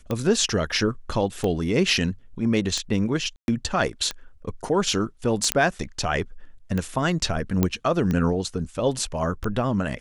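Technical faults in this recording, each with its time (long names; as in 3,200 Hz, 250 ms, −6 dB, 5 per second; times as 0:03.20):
scratch tick 45 rpm −14 dBFS
0:03.36–0:03.48: drop-out 121 ms
0:05.52: click −2 dBFS
0:07.63: click −7 dBFS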